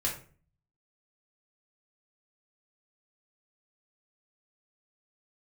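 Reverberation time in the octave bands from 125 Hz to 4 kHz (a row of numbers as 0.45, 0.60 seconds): 0.75, 0.55, 0.45, 0.40, 0.35, 0.30 seconds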